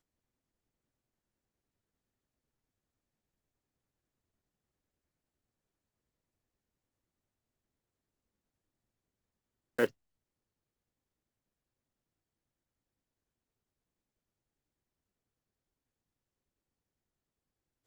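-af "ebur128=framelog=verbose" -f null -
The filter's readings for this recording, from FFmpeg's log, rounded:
Integrated loudness:
  I:         -34.5 LUFS
  Threshold: -44.5 LUFS
Loudness range:
  LRA:         0.0 LU
  Threshold: -62.4 LUFS
  LRA low:   -42.3 LUFS
  LRA high:  -42.3 LUFS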